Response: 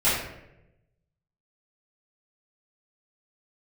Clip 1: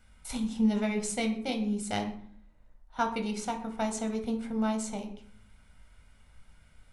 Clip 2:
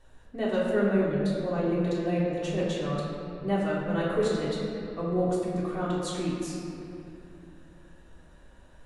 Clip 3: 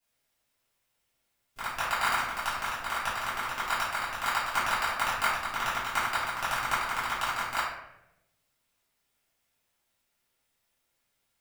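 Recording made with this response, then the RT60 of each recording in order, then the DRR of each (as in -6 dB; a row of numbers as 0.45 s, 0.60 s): 3; 0.60 s, 2.8 s, 0.90 s; 4.5 dB, -7.5 dB, -13.0 dB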